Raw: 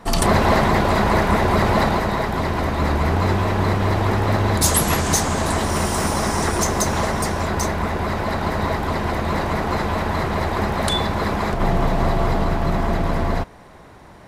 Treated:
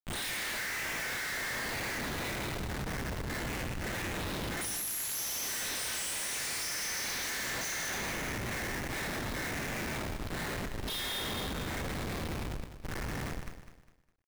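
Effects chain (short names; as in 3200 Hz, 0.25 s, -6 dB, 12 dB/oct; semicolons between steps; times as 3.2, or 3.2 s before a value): random spectral dropouts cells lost 83%; steep high-pass 1700 Hz 72 dB/oct; high shelf 9000 Hz +10 dB; notch 3000 Hz, Q 13; ring modulator 180 Hz; flange 0.16 Hz, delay 2.9 ms, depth 5.1 ms, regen +77%; Schroeder reverb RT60 2 s, combs from 25 ms, DRR -9.5 dB; Schmitt trigger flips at -36 dBFS; lo-fi delay 0.203 s, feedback 35%, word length 11-bit, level -10.5 dB; gain -4.5 dB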